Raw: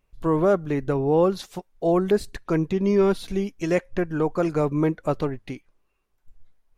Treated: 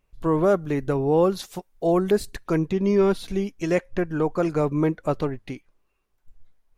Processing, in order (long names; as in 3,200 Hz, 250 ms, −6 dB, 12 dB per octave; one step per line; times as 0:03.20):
0:00.43–0:02.59: high-shelf EQ 7,900 Hz +7.5 dB